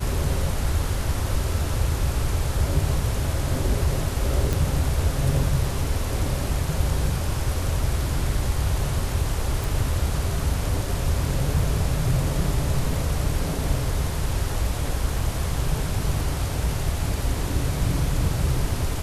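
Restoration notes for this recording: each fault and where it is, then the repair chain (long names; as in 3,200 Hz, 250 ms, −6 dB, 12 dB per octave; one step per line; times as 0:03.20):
0:04.53: click
0:09.64: click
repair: click removal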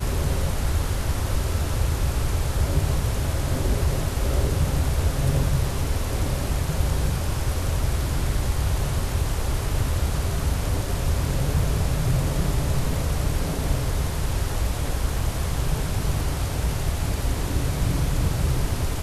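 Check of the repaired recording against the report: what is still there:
none of them is left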